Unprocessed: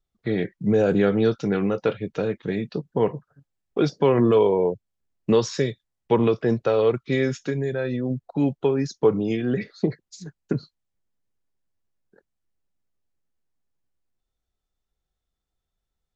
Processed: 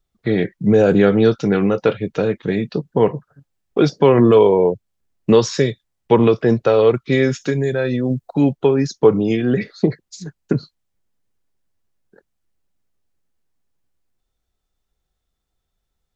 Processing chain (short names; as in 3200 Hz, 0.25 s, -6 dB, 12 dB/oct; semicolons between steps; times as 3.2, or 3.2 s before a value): 7.4–8.41 high shelf 5400 Hz +8 dB; gain +6.5 dB